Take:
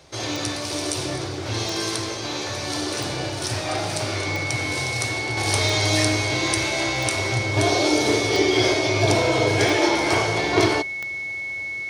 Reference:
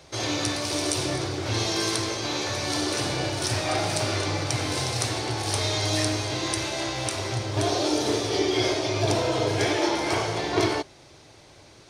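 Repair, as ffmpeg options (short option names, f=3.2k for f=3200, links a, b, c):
-af "adeclick=t=4,bandreject=f=2.2k:w=30,asetnsamples=n=441:p=0,asendcmd='5.37 volume volume -4.5dB',volume=0dB"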